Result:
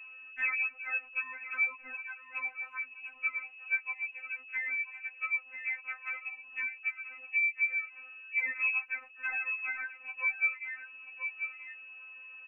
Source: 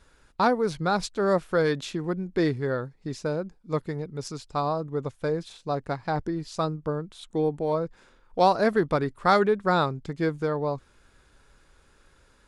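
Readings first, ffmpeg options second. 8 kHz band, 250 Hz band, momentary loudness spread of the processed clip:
below −35 dB, below −40 dB, 12 LU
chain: -filter_complex "[0:a]acrossover=split=590[link_01][link_02];[link_02]asoftclip=type=hard:threshold=-25.5dB[link_03];[link_01][link_03]amix=inputs=2:normalize=0,aeval=exprs='val(0)+0.0141*(sin(2*PI*50*n/s)+sin(2*PI*2*50*n/s)/2+sin(2*PI*3*50*n/s)/3+sin(2*PI*4*50*n/s)/4+sin(2*PI*5*50*n/s)/5)':channel_layout=same,aecho=1:1:984:0.158,lowpass=frequency=2400:width_type=q:width=0.5098,lowpass=frequency=2400:width_type=q:width=0.6013,lowpass=frequency=2400:width_type=q:width=0.9,lowpass=frequency=2400:width_type=q:width=2.563,afreqshift=-2800,equalizer=frequency=130:width=1.1:gain=-13.5,bandreject=frequency=2000:width=14,acompressor=threshold=-33dB:ratio=6,afftfilt=real='re*3.46*eq(mod(b,12),0)':imag='im*3.46*eq(mod(b,12),0)':win_size=2048:overlap=0.75,volume=3.5dB"

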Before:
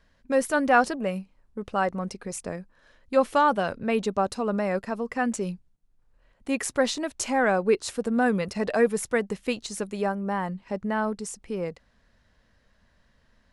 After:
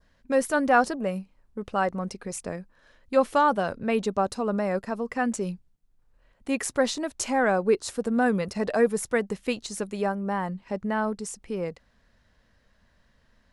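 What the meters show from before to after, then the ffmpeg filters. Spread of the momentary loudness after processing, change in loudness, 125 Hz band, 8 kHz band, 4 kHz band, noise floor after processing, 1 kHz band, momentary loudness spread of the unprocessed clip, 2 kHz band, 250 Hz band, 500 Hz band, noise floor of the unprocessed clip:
12 LU, 0.0 dB, 0.0 dB, 0.0 dB, −1.0 dB, −65 dBFS, −0.5 dB, 12 LU, −1.0 dB, 0.0 dB, 0.0 dB, −65 dBFS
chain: -af "adynamicequalizer=threshold=0.00708:dfrequency=2600:dqfactor=1.2:tfrequency=2600:tqfactor=1.2:attack=5:release=100:ratio=0.375:range=3:mode=cutabove:tftype=bell"

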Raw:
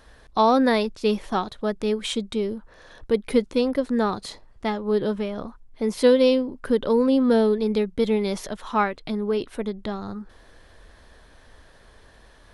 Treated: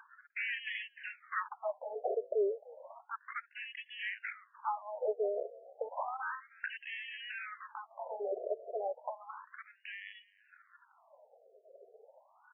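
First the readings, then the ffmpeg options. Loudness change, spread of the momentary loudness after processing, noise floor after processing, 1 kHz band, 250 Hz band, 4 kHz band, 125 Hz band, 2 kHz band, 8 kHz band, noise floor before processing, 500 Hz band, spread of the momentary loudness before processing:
−16.0 dB, 13 LU, −69 dBFS, −13.5 dB, below −30 dB, −16.0 dB, below −40 dB, −5.5 dB, below −35 dB, −53 dBFS, −16.0 dB, 13 LU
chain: -filter_complex "[0:a]afftdn=noise_reduction=20:noise_floor=-44,highshelf=frequency=3200:gain=8.5,acompressor=mode=upward:threshold=-21dB:ratio=2.5,acrusher=samples=14:mix=1:aa=0.000001,adynamicsmooth=sensitivity=4.5:basefreq=1200,highpass=310,lowpass=6300,volume=21.5dB,asoftclip=hard,volume=-21.5dB,asplit=2[link_01][link_02];[link_02]asplit=4[link_03][link_04][link_05][link_06];[link_03]adelay=301,afreqshift=60,volume=-23dB[link_07];[link_04]adelay=602,afreqshift=120,volume=-28.4dB[link_08];[link_05]adelay=903,afreqshift=180,volume=-33.7dB[link_09];[link_06]adelay=1204,afreqshift=240,volume=-39.1dB[link_10];[link_07][link_08][link_09][link_10]amix=inputs=4:normalize=0[link_11];[link_01][link_11]amix=inputs=2:normalize=0,afftfilt=real='re*between(b*sr/1024,500*pow(2400/500,0.5+0.5*sin(2*PI*0.32*pts/sr))/1.41,500*pow(2400/500,0.5+0.5*sin(2*PI*0.32*pts/sr))*1.41)':imag='im*between(b*sr/1024,500*pow(2400/500,0.5+0.5*sin(2*PI*0.32*pts/sr))/1.41,500*pow(2400/500,0.5+0.5*sin(2*PI*0.32*pts/sr))*1.41)':win_size=1024:overlap=0.75,volume=-2dB"

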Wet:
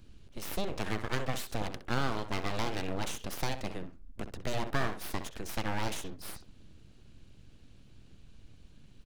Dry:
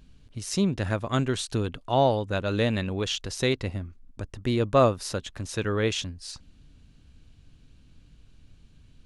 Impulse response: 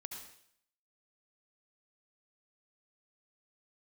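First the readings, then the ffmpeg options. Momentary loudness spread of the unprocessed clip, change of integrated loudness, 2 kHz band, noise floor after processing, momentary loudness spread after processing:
17 LU, −10.0 dB, −4.0 dB, −56 dBFS, 11 LU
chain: -filter_complex "[0:a]acrossover=split=280|1000[link_01][link_02][link_03];[link_01]acompressor=threshold=-36dB:ratio=4[link_04];[link_02]acompressor=threshold=-31dB:ratio=4[link_05];[link_03]acompressor=threshold=-35dB:ratio=4[link_06];[link_04][link_05][link_06]amix=inputs=3:normalize=0,asplit=2[link_07][link_08];[link_08]adelay=64,lowpass=frequency=1800:poles=1,volume=-9dB,asplit=2[link_09][link_10];[link_10]adelay=64,lowpass=frequency=1800:poles=1,volume=0.27,asplit=2[link_11][link_12];[link_12]adelay=64,lowpass=frequency=1800:poles=1,volume=0.27[link_13];[link_07][link_09][link_11][link_13]amix=inputs=4:normalize=0,aeval=exprs='abs(val(0))':channel_layout=same"

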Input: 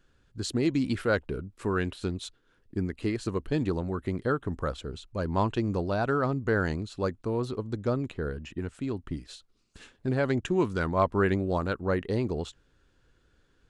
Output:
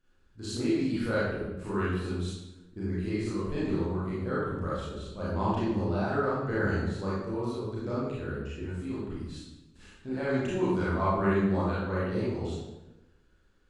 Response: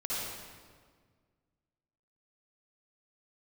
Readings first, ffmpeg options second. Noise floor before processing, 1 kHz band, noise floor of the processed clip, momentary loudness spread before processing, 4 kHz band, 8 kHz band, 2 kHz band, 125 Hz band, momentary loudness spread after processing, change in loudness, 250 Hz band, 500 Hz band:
−67 dBFS, −1.0 dB, −63 dBFS, 10 LU, −3.0 dB, can't be measured, −1.5 dB, −1.0 dB, 10 LU, −1.0 dB, −0.5 dB, −2.0 dB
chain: -filter_complex "[1:a]atrim=start_sample=2205,asetrate=83790,aresample=44100[link_01];[0:a][link_01]afir=irnorm=-1:irlink=0,volume=-2dB"

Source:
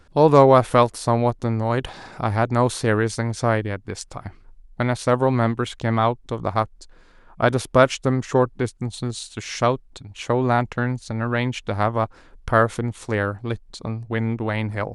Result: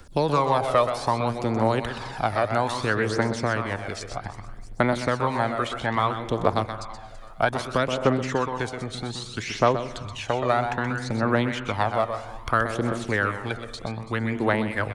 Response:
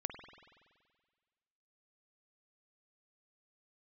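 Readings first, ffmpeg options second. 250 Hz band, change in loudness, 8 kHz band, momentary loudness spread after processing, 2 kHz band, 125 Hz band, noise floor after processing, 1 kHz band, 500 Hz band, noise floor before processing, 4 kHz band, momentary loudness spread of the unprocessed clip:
−4.0 dB, −4.0 dB, −5.0 dB, 11 LU, 0.0 dB, −6.0 dB, −40 dBFS, −2.0 dB, −4.5 dB, −51 dBFS, 0.0 dB, 13 LU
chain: -filter_complex "[0:a]aecho=1:1:329|658|987:0.0708|0.0311|0.0137,crystalizer=i=2.5:c=0,acrossover=split=220|560|2100|4900[link_01][link_02][link_03][link_04][link_05];[link_01]acompressor=threshold=-38dB:ratio=4[link_06];[link_02]acompressor=threshold=-29dB:ratio=4[link_07];[link_03]acompressor=threshold=-23dB:ratio=4[link_08];[link_04]acompressor=threshold=-39dB:ratio=4[link_09];[link_05]acompressor=threshold=-57dB:ratio=4[link_10];[link_06][link_07][link_08][link_09][link_10]amix=inputs=5:normalize=0,asplit=2[link_11][link_12];[1:a]atrim=start_sample=2205,afade=type=out:start_time=0.42:duration=0.01,atrim=end_sample=18963,adelay=126[link_13];[link_12][link_13]afir=irnorm=-1:irlink=0,volume=-6dB[link_14];[link_11][link_14]amix=inputs=2:normalize=0,aphaser=in_gain=1:out_gain=1:delay=1.7:decay=0.48:speed=0.62:type=triangular"

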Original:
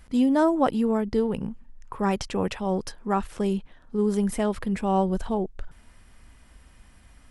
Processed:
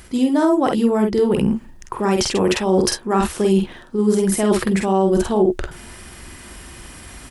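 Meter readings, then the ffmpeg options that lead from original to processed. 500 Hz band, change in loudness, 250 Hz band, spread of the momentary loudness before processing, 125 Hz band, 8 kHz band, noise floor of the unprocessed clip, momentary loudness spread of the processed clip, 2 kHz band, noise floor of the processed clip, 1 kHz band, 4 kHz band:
+9.0 dB, +7.5 dB, +7.0 dB, 10 LU, +7.5 dB, +16.0 dB, −54 dBFS, 21 LU, +9.0 dB, −42 dBFS, +5.0 dB, +13.5 dB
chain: -af "highpass=frequency=78:poles=1,highshelf=frequency=3800:gain=6.5,areverse,acompressor=threshold=-32dB:ratio=6,areverse,equalizer=frequency=360:width=6.4:gain=11,aecho=1:1:47|61:0.668|0.178,alimiter=level_in=21.5dB:limit=-1dB:release=50:level=0:latency=1,volume=-6dB"

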